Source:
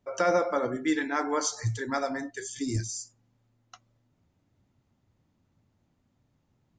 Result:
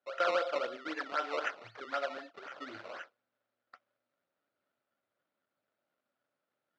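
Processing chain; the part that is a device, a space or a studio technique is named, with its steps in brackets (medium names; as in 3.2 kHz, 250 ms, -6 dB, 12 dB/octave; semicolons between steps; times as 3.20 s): circuit-bent sampling toy (decimation with a swept rate 19×, swing 100% 3.9 Hz; cabinet simulation 500–4700 Hz, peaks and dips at 580 Hz +8 dB, 920 Hz -4 dB, 1.4 kHz +9 dB); trim -8 dB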